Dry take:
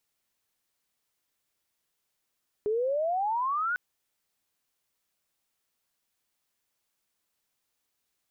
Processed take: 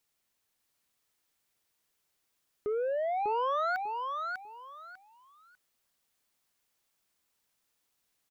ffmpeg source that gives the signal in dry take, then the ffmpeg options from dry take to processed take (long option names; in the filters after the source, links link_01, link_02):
-f lavfi -i "aevalsrc='pow(10,(-24.5-1.5*t/1.1)/20)*sin(2*PI*410*1.1/log(1500/410)*(exp(log(1500/410)*t/1.1)-1))':duration=1.1:sample_rate=44100"
-filter_complex "[0:a]asoftclip=type=tanh:threshold=-27.5dB,asplit=2[link_01][link_02];[link_02]aecho=0:1:597|1194|1791:0.631|0.145|0.0334[link_03];[link_01][link_03]amix=inputs=2:normalize=0"